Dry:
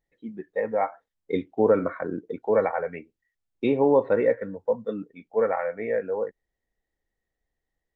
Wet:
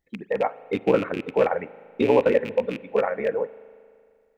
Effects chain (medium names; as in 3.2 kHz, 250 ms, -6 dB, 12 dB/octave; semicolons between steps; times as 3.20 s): rattle on loud lows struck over -34 dBFS, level -25 dBFS; granular stretch 0.55×, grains 30 ms; spring tank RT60 2.2 s, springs 38 ms, chirp 55 ms, DRR 18 dB; trim +3.5 dB